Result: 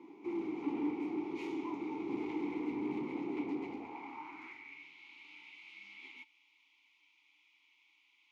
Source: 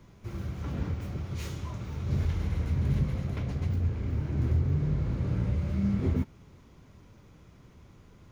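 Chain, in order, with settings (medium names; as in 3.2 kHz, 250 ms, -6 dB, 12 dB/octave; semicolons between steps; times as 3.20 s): high-pass sweep 390 Hz -> 3 kHz, 3.56–4.91 s; hard clipper -38.5 dBFS, distortion -10 dB; vowel filter u; trim +14.5 dB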